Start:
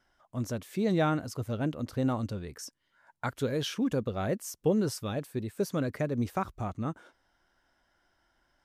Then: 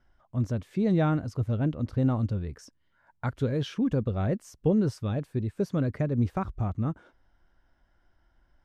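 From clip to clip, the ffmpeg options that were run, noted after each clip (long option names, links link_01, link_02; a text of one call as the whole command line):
ffmpeg -i in.wav -af "aemphasis=mode=reproduction:type=bsi,volume=-1.5dB" out.wav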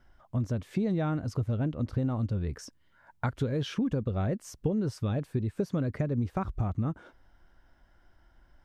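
ffmpeg -i in.wav -af "acompressor=threshold=-31dB:ratio=6,volume=5dB" out.wav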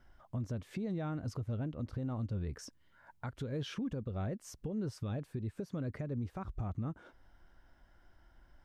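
ffmpeg -i in.wav -af "alimiter=level_in=4dB:limit=-24dB:level=0:latency=1:release=346,volume=-4dB,volume=-1.5dB" out.wav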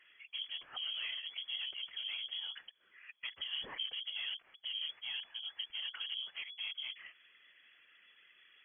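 ffmpeg -i in.wav -filter_complex "[0:a]asplit=2[link_01][link_02];[link_02]highpass=frequency=720:poles=1,volume=19dB,asoftclip=type=tanh:threshold=-29dB[link_03];[link_01][link_03]amix=inputs=2:normalize=0,lowpass=frequency=2200:poles=1,volume=-6dB,afftfilt=real='hypot(re,im)*cos(2*PI*random(0))':imag='hypot(re,im)*sin(2*PI*random(1))':win_size=512:overlap=0.75,lowpass=frequency=2900:width_type=q:width=0.5098,lowpass=frequency=2900:width_type=q:width=0.6013,lowpass=frequency=2900:width_type=q:width=0.9,lowpass=frequency=2900:width_type=q:width=2.563,afreqshift=-3400,volume=1.5dB" out.wav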